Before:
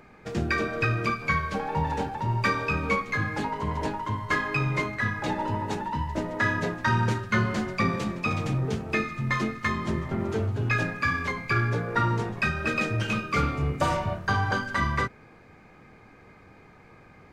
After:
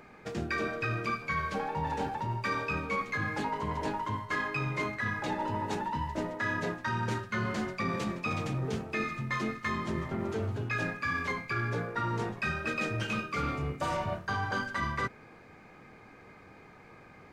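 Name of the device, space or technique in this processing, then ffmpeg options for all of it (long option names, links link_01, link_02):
compression on the reversed sound: -af "lowshelf=frequency=130:gain=-6.5,areverse,acompressor=threshold=-29dB:ratio=6,areverse"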